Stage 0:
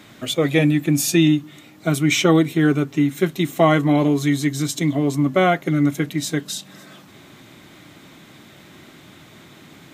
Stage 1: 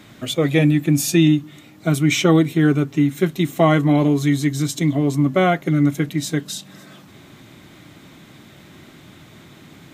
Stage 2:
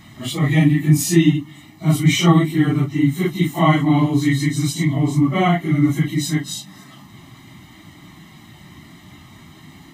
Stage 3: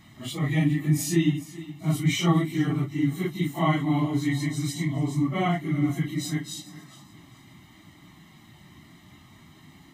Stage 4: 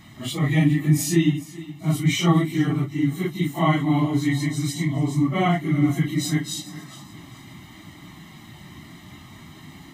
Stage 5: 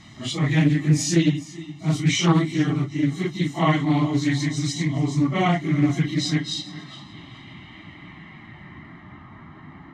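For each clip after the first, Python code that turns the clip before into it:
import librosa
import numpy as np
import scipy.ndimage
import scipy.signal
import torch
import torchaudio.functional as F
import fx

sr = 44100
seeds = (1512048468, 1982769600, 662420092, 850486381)

y1 = fx.low_shelf(x, sr, hz=180.0, db=6.5)
y1 = y1 * librosa.db_to_amplitude(-1.0)
y2 = fx.phase_scramble(y1, sr, seeds[0], window_ms=100)
y2 = y2 + 0.81 * np.pad(y2, (int(1.0 * sr / 1000.0), 0))[:len(y2)]
y2 = y2 * librosa.db_to_amplitude(-1.0)
y3 = fx.echo_feedback(y2, sr, ms=417, feedback_pct=30, wet_db=-17.0)
y3 = y3 * librosa.db_to_amplitude(-8.5)
y4 = fx.rider(y3, sr, range_db=5, speed_s=2.0)
y4 = y4 * librosa.db_to_amplitude(3.0)
y5 = fx.filter_sweep_lowpass(y4, sr, from_hz=6000.0, to_hz=1500.0, start_s=5.83, end_s=9.22, q=1.8)
y5 = fx.doppler_dist(y5, sr, depth_ms=0.22)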